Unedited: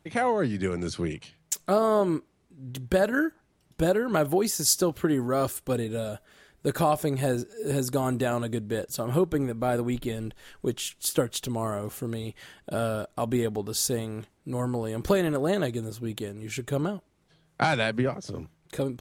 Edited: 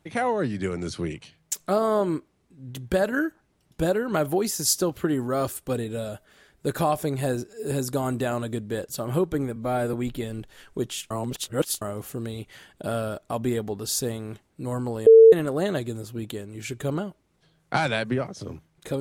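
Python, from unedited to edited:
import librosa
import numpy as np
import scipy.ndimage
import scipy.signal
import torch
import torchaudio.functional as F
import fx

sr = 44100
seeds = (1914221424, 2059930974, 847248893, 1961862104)

y = fx.edit(x, sr, fx.stretch_span(start_s=9.56, length_s=0.25, factor=1.5),
    fx.reverse_span(start_s=10.98, length_s=0.71),
    fx.bleep(start_s=14.94, length_s=0.26, hz=449.0, db=-7.0), tone=tone)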